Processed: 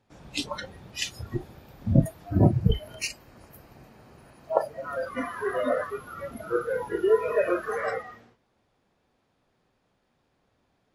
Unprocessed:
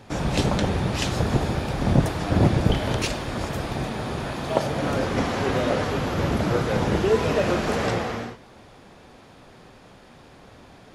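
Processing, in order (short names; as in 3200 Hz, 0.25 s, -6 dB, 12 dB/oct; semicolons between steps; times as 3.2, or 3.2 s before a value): 2.28–4.91 notch 3500 Hz, Q 5.1; spectral noise reduction 23 dB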